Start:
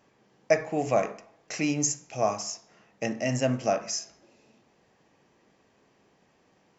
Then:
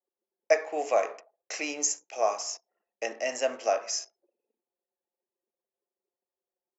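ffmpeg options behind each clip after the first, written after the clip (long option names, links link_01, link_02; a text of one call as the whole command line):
ffmpeg -i in.wav -af "anlmdn=0.00631,highpass=frequency=410:width=0.5412,highpass=frequency=410:width=1.3066" out.wav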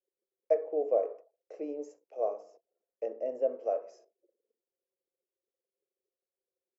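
ffmpeg -i in.wav -filter_complex "[0:a]acrossover=split=660[link_01][link_02];[link_01]aeval=exprs='val(0)*(1-0.5/2+0.5/2*cos(2*PI*1.2*n/s))':channel_layout=same[link_03];[link_02]aeval=exprs='val(0)*(1-0.5/2-0.5/2*cos(2*PI*1.2*n/s))':channel_layout=same[link_04];[link_03][link_04]amix=inputs=2:normalize=0,firequalizer=gain_entry='entry(160,0);entry(480,14);entry(810,-5);entry(1800,-17);entry(6500,-27)':delay=0.05:min_phase=1,volume=-7.5dB" out.wav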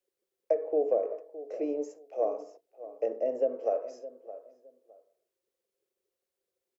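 ffmpeg -i in.wav -filter_complex "[0:a]acrossover=split=340[link_01][link_02];[link_02]acompressor=threshold=-31dB:ratio=10[link_03];[link_01][link_03]amix=inputs=2:normalize=0,asplit=2[link_04][link_05];[link_05]adelay=614,lowpass=frequency=1400:poles=1,volume=-14.5dB,asplit=2[link_06][link_07];[link_07]adelay=614,lowpass=frequency=1400:poles=1,volume=0.23[link_08];[link_04][link_06][link_08]amix=inputs=3:normalize=0,volume=6dB" out.wav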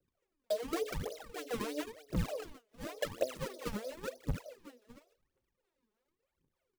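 ffmpeg -i in.wav -af "acompressor=threshold=-35dB:ratio=16,acrusher=samples=37:mix=1:aa=0.000001:lfo=1:lforange=59.2:lforate=3.3,aphaser=in_gain=1:out_gain=1:delay=4.9:decay=0.77:speed=0.93:type=triangular,volume=-2dB" out.wav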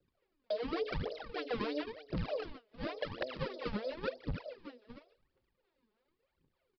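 ffmpeg -i in.wav -af "aeval=exprs='(mod(10.6*val(0)+1,2)-1)/10.6':channel_layout=same,alimiter=level_in=7dB:limit=-24dB:level=0:latency=1:release=120,volume=-7dB,aresample=11025,aresample=44100,volume=4dB" out.wav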